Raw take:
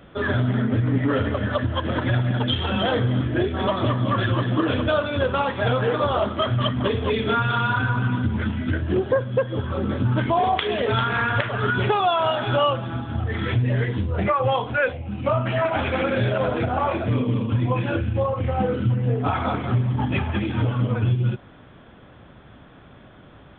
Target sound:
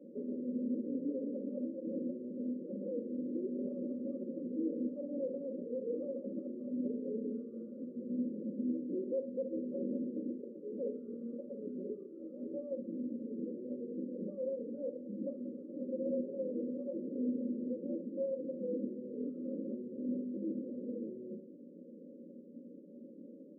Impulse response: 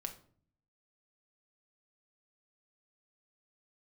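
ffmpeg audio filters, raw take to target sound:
-filter_complex "[0:a]alimiter=limit=-16.5dB:level=0:latency=1:release=355,asoftclip=type=tanh:threshold=-31.5dB,asuperpass=centerf=350:order=12:qfactor=0.77[link_01];[1:a]atrim=start_sample=2205,asetrate=61740,aresample=44100[link_02];[link_01][link_02]afir=irnorm=-1:irlink=0,afftfilt=real='re*eq(mod(floor(b*sr/1024/570),2),0)':imag='im*eq(mod(floor(b*sr/1024/570),2),0)':win_size=1024:overlap=0.75,volume=3.5dB"

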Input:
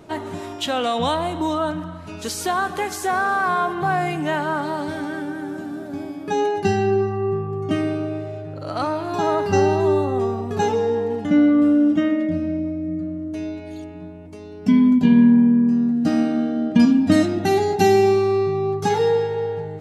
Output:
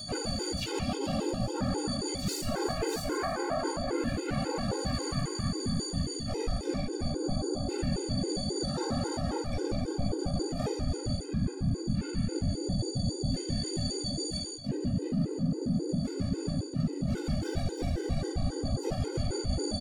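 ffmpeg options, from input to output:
ffmpeg -i in.wav -filter_complex "[0:a]acrossover=split=4500[link_01][link_02];[link_02]asoftclip=type=hard:threshold=-30dB[link_03];[link_01][link_03]amix=inputs=2:normalize=0,aeval=exprs='val(0)+0.0355*sin(2*PI*5000*n/s)':channel_layout=same,tiltshelf=frequency=970:gain=5,afreqshift=-420,afftfilt=real='hypot(re,im)*cos(2*PI*random(0))':imag='hypot(re,im)*sin(2*PI*random(1))':win_size=512:overlap=0.75,lowshelf=frequency=210:gain=-4.5,aecho=1:1:54|60|135|291:0.119|0.473|0.422|0.266,acontrast=45,asplit=4[link_04][link_05][link_06][link_07];[link_05]asetrate=33038,aresample=44100,atempo=1.33484,volume=-17dB[link_08];[link_06]asetrate=66075,aresample=44100,atempo=0.66742,volume=-5dB[link_09];[link_07]asetrate=88200,aresample=44100,atempo=0.5,volume=-11dB[link_10];[link_04][link_08][link_09][link_10]amix=inputs=4:normalize=0,bandreject=frequency=1000:width=9.2,areverse,acompressor=threshold=-24dB:ratio=16,areverse,afftfilt=real='re*gt(sin(2*PI*3.7*pts/sr)*(1-2*mod(floor(b*sr/1024/270),2)),0)':imag='im*gt(sin(2*PI*3.7*pts/sr)*(1-2*mod(floor(b*sr/1024/270),2)),0)':win_size=1024:overlap=0.75" out.wav

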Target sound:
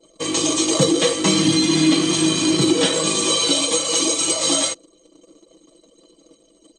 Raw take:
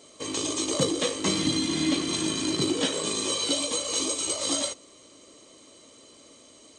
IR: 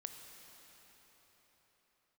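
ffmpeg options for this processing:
-filter_complex "[0:a]anlmdn=0.01,aecho=1:1:6.1:0.78,asplit=2[link_01][link_02];[link_02]alimiter=limit=-16dB:level=0:latency=1,volume=0dB[link_03];[link_01][link_03]amix=inputs=2:normalize=0,volume=1.5dB"

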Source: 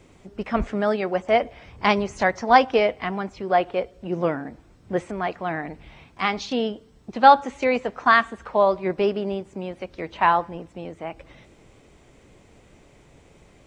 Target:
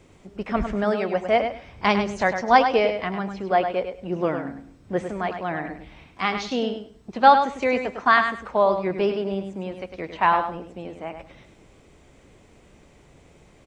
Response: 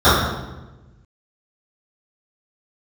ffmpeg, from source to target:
-filter_complex "[0:a]aecho=1:1:102|204|306:0.398|0.0717|0.0129,asplit=2[link_01][link_02];[1:a]atrim=start_sample=2205,asetrate=66150,aresample=44100[link_03];[link_02][link_03]afir=irnorm=-1:irlink=0,volume=-48dB[link_04];[link_01][link_04]amix=inputs=2:normalize=0,volume=-1dB"

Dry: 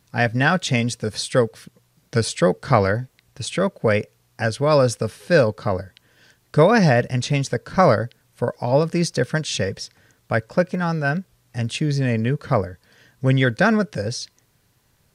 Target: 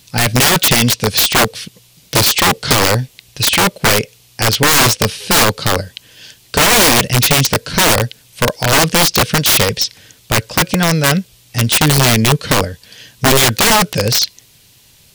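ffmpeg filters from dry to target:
ffmpeg -i in.wav -filter_complex "[0:a]acrossover=split=6600[link_01][link_02];[link_02]acompressor=threshold=-53dB:ratio=4:attack=1:release=60[link_03];[link_01][link_03]amix=inputs=2:normalize=0,highshelf=frequency=2100:width_type=q:width=1.5:gain=9,asplit=2[link_04][link_05];[link_05]alimiter=limit=-9dB:level=0:latency=1,volume=2dB[link_06];[link_04][link_06]amix=inputs=2:normalize=0,aeval=exprs='(mod(2.37*val(0)+1,2)-1)/2.37':channel_layout=same,volume=2.5dB" out.wav

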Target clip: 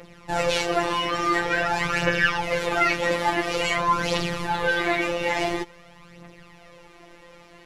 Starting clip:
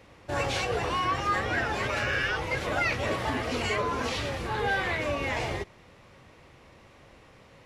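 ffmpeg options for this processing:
ffmpeg -i in.wav -af "aphaser=in_gain=1:out_gain=1:delay=3.9:decay=0.57:speed=0.48:type=triangular,afftfilt=real='hypot(re,im)*cos(PI*b)':imag='0':win_size=1024:overlap=0.75,volume=7.5dB" out.wav

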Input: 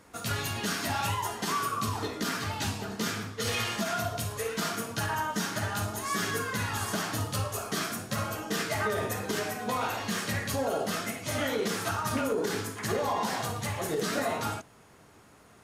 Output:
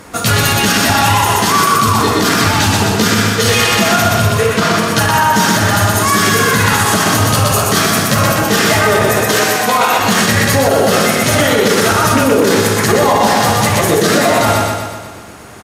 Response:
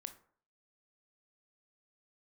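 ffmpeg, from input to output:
-filter_complex "[0:a]asettb=1/sr,asplit=3[link_01][link_02][link_03];[link_01]atrim=end=4.164[link_04];[link_02]atrim=start=4.16:end=4.88,asetpts=PTS-STARTPTS,afade=type=in:duration=0.004:curve=qsin,afade=type=out:start_time=0.716:duration=0.004:curve=qsin,lowpass=frequency=3300:poles=1[link_05];[link_03]atrim=start=4.876[link_06];[link_04][link_05]acrossfade=duration=0.004:curve1=hsin:curve2=qsin[link_07];[link_07][link_06]acrossfade=duration=0.004:curve1=qsin:curve2=hsin,asettb=1/sr,asplit=3[link_08][link_09][link_10];[link_08]atrim=end=9.134[link_11];[link_09]atrim=start=9.13:end=9.99,asetpts=PTS-STARTPTS,afade=type=in:duration=0.004:curve=qsin,afade=type=out:start_time=0.856:duration=0.004:curve=qsin,lowshelf=frequency=320:gain=-11.5[link_12];[link_10]atrim=start=9.986[link_13];[link_11][link_12]acrossfade=duration=0.004:curve1=hsin:curve2=qsin[link_14];[link_14][link_13]acrossfade=duration=0.004:curve1=qsin:curve2=hsin,aecho=1:1:123|246|369|492|615|738|861|984:0.668|0.374|0.21|0.117|0.0657|0.0368|0.0206|0.0115,alimiter=level_in=21dB:limit=-1dB:release=50:level=0:latency=1,volume=-1dB" -ar 48000 -c:a libopus -b:a 256k

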